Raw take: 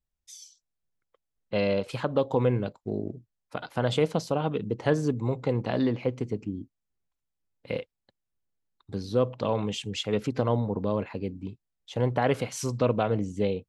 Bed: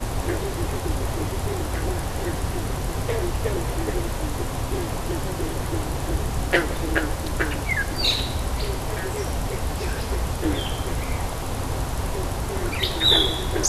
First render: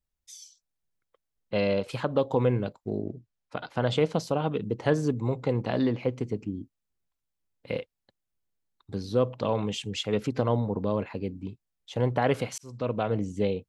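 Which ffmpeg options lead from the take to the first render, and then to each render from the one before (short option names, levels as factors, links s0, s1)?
-filter_complex "[0:a]asettb=1/sr,asplit=3[s0][s1][s2];[s0]atrim=end=3.024[s3];[s1]atrim=start=3.02:end=4.12,asetpts=PTS-STARTPTS,afade=t=in:d=0.004:c=qsin,afade=t=out:st=1.096:d=0.004:c=qsin,lowpass=6600[s4];[s2]atrim=start=4.116[s5];[s3][s4]acrossfade=d=0.004:c1=hsin:c2=qsin[s6];[s6][s5]acrossfade=d=0.004:c1=qsin:c2=hsin,asplit=2[s7][s8];[s7]atrim=end=12.58,asetpts=PTS-STARTPTS,afade=t=out:st=12.576:d=0.004:c=hsin[s9];[s8]atrim=start=12.58,asetpts=PTS-STARTPTS,afade=t=in:d=0.8:c=qsin[s10];[s9][s10]concat=n=2:v=0:a=1"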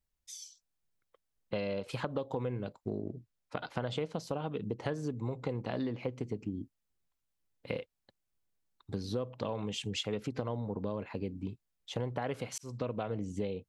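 -af "acompressor=threshold=0.0251:ratio=6"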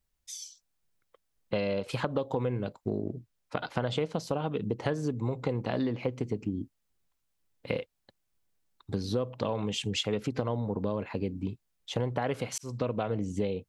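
-af "volume=1.78"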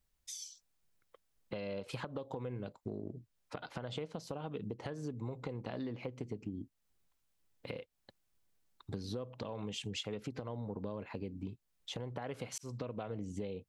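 -af "alimiter=limit=0.119:level=0:latency=1:release=233,acompressor=threshold=0.00562:ratio=2"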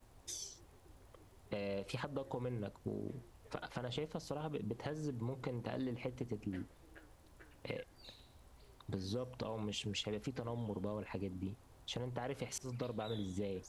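-filter_complex "[1:a]volume=0.0158[s0];[0:a][s0]amix=inputs=2:normalize=0"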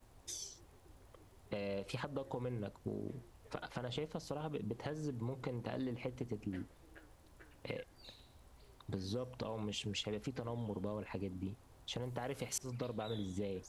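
-filter_complex "[0:a]asettb=1/sr,asplit=3[s0][s1][s2];[s0]atrim=end=12.024[s3];[s1]atrim=start=12.02:end=12.58,asetpts=PTS-STARTPTS,afade=t=in:d=0.004:c=qsin,afade=t=out:st=0.556:d=0.004:c=qsin,highshelf=f=7200:g=9.5[s4];[s2]atrim=start=12.576[s5];[s3][s4]acrossfade=d=0.004:c1=hsin:c2=qsin[s6];[s6][s5]acrossfade=d=0.004:c1=qsin:c2=hsin"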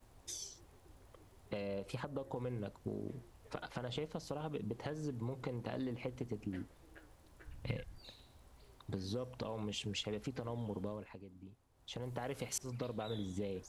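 -filter_complex "[0:a]asettb=1/sr,asplit=3[s0][s1][s2];[s0]atrim=end=1.624[s3];[s1]atrim=start=1.62:end=2.36,asetpts=PTS-STARTPTS,afade=t=in:d=0.004:c=qsin,afade=t=out:st=0.736:d=0.004:c=qsin,equalizer=f=3400:w=0.5:g=-4.5[s4];[s2]atrim=start=2.356[s5];[s3][s4]acrossfade=d=0.004:c1=hsin:c2=qsin[s6];[s6][s5]acrossfade=d=0.004:c1=qsin:c2=hsin,asplit=3[s7][s8][s9];[s7]afade=t=out:st=7.45:d=0.02[s10];[s8]asubboost=boost=5:cutoff=160,afade=t=in:st=7.45:d=0.02,afade=t=out:st=7.97:d=0.02[s11];[s9]afade=t=in:st=7.97:d=0.02[s12];[s10][s11][s12]amix=inputs=3:normalize=0,asplit=3[s13][s14][s15];[s13]atrim=end=11.19,asetpts=PTS-STARTPTS,afade=t=out:st=10.82:d=0.37:silence=0.251189[s16];[s14]atrim=start=11.19:end=11.73,asetpts=PTS-STARTPTS,volume=0.251[s17];[s15]atrim=start=11.73,asetpts=PTS-STARTPTS,afade=t=in:d=0.37:silence=0.251189[s18];[s16][s17][s18]concat=n=3:v=0:a=1"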